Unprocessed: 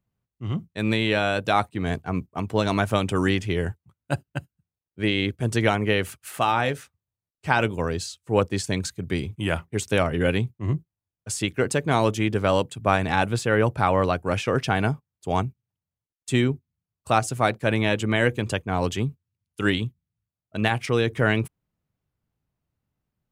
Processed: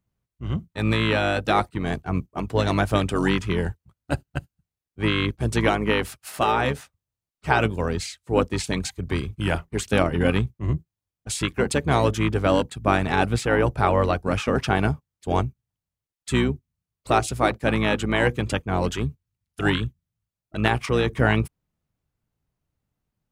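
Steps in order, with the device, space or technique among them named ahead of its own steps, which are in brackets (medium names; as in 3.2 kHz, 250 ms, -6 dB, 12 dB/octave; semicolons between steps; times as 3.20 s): octave pedal (harmony voices -12 st -6 dB)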